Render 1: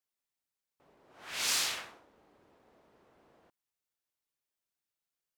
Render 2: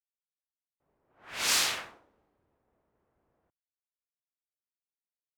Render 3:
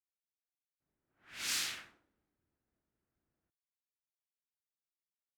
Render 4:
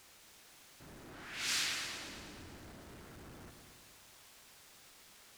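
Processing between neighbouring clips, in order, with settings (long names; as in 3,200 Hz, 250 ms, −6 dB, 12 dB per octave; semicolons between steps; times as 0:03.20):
multiband upward and downward expander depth 70%
flat-topped bell 690 Hz −8.5 dB; level −9 dB
converter with a step at zero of −46.5 dBFS; high-shelf EQ 11,000 Hz −11.5 dB; echo machine with several playback heads 112 ms, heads first and second, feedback 53%, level −11 dB; level +1 dB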